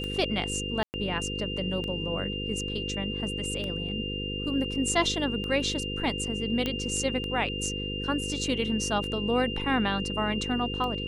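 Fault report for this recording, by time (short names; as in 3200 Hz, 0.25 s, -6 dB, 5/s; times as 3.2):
buzz 50 Hz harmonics 10 -35 dBFS
tick 33 1/3 rpm -22 dBFS
tone 2800 Hz -34 dBFS
0.83–0.94 gap 0.109 s
6.66 pop -15 dBFS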